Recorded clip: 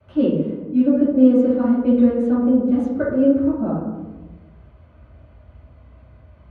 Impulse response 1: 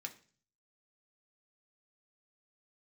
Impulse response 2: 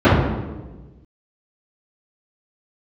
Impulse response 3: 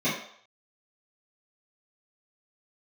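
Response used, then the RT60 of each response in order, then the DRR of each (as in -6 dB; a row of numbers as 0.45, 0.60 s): 2; 0.40, 1.2, 0.65 s; 2.5, -16.0, -12.5 dB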